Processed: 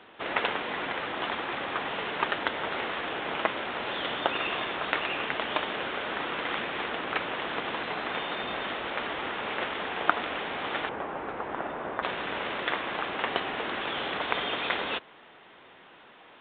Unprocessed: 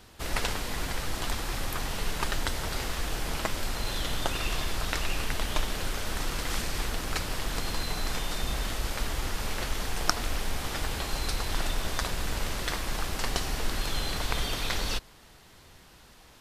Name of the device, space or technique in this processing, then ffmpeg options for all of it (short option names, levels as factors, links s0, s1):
telephone: -filter_complex "[0:a]asettb=1/sr,asplit=3[s0][s1][s2];[s0]atrim=end=10.894[s3];[s1]atrim=start=10.89:end=12.03,asetpts=PTS-STARTPTS,afade=t=in:d=0.004:c=qsin,afade=t=out:st=1.136:d=0.004:c=qsin,lowpass=1300[s4];[s2]atrim=start=12.026[s5];[s3][s4]acrossfade=d=0.004:c1=hsin:c2=qsin[s6];[s6][s5]acrossfade=d=0.004:c1=qsin:c2=hsin,highpass=320,lowpass=3300,volume=1.88" -ar 8000 -c:a pcm_mulaw